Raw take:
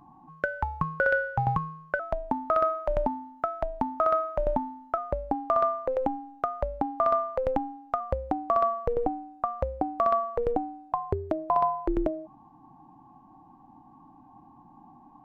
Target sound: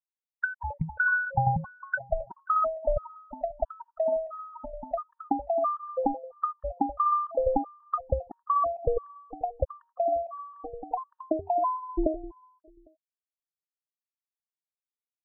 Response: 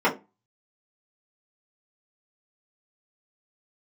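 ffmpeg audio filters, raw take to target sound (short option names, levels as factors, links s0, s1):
-filter_complex "[0:a]asettb=1/sr,asplit=3[s0][s1][s2];[s0]atrim=end=5.504[s3];[s1]atrim=start=5.5:end=6.05,asetpts=PTS-STARTPTS,afade=t=in:d=0.004:c=qsin,afade=t=out:st=0.546:d=0.004:c=qsin,highpass=410[s4];[s2]atrim=start=6.046[s5];[s3][s4]acrossfade=d=0.004:c1=hsin:c2=qsin[s6];[s6][s5]acrossfade=d=0.004:c1=qsin:c2=hsin,afftfilt=real='re*gte(hypot(re,im),0.158)':imag='im*gte(hypot(re,im),0.158)':win_size=1024:overlap=0.75,asplit=2[s7][s8];[s8]acompressor=threshold=0.0224:ratio=8,volume=0.944[s9];[s7][s9]amix=inputs=2:normalize=0,aecho=1:1:268|536|804:0.168|0.0621|0.023,afftfilt=real='re*gt(sin(2*PI*1.5*pts/sr)*(1-2*mod(floor(b*sr/1024/910),2)),0)':imag='im*gt(sin(2*PI*1.5*pts/sr)*(1-2*mod(floor(b*sr/1024/910),2)),0)':win_size=1024:overlap=0.75"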